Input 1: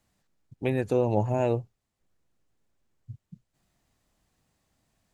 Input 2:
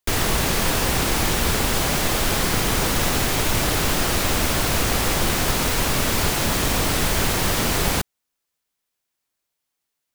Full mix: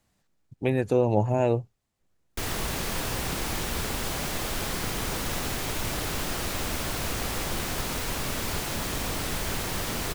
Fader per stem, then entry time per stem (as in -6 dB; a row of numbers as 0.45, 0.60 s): +2.0, -9.5 dB; 0.00, 2.30 s